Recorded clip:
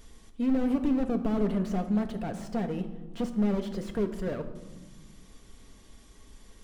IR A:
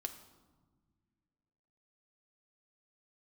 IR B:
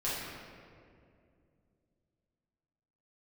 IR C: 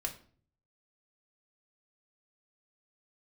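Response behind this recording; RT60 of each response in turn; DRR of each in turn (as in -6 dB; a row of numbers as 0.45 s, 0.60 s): A; no single decay rate, 2.4 s, 0.45 s; 5.5 dB, -9.5 dB, 1.0 dB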